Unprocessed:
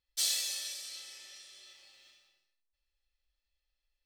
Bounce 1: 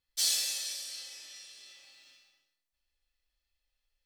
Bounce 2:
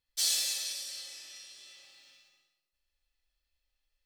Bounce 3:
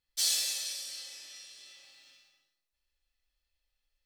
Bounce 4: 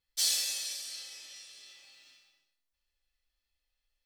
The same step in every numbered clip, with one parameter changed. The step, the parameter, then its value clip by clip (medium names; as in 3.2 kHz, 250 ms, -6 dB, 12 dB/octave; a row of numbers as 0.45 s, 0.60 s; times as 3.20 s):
gated-style reverb, gate: 140 ms, 320 ms, 210 ms, 90 ms